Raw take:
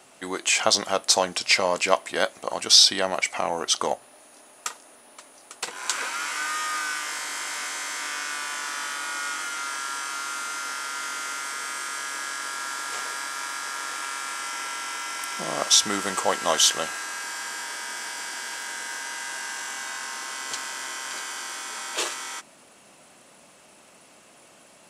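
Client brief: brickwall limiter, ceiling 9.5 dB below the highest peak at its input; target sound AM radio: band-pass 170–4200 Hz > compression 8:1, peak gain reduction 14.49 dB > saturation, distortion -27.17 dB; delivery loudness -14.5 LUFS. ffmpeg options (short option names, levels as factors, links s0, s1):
-af "alimiter=limit=0.282:level=0:latency=1,highpass=170,lowpass=4200,acompressor=threshold=0.0224:ratio=8,asoftclip=threshold=0.075,volume=12.6"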